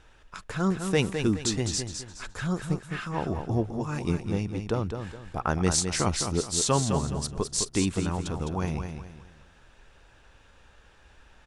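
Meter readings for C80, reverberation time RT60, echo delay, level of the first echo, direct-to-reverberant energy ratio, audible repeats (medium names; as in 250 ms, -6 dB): no reverb, no reverb, 209 ms, -7.0 dB, no reverb, 3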